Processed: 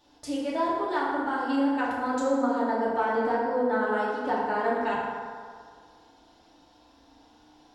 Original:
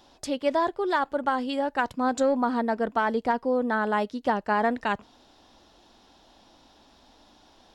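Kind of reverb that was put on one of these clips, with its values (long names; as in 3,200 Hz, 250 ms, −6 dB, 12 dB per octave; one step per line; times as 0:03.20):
feedback delay network reverb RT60 2 s, low-frequency decay 0.8×, high-frequency decay 0.5×, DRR −7.5 dB
level −10 dB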